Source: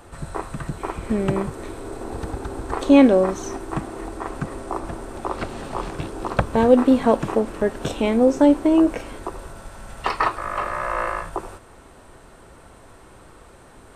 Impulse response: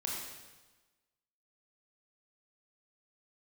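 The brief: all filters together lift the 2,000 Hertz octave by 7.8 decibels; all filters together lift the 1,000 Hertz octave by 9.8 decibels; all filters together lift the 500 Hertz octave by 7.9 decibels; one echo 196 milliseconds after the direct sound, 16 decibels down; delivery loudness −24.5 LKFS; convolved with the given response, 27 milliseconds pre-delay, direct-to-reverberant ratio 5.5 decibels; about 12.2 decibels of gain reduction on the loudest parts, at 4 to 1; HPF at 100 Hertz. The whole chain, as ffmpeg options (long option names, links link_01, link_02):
-filter_complex "[0:a]highpass=100,equalizer=frequency=500:width_type=o:gain=6.5,equalizer=frequency=1000:width_type=o:gain=8.5,equalizer=frequency=2000:width_type=o:gain=6.5,acompressor=threshold=-16dB:ratio=4,aecho=1:1:196:0.158,asplit=2[link_01][link_02];[1:a]atrim=start_sample=2205,adelay=27[link_03];[link_02][link_03]afir=irnorm=-1:irlink=0,volume=-8dB[link_04];[link_01][link_04]amix=inputs=2:normalize=0,volume=-3dB"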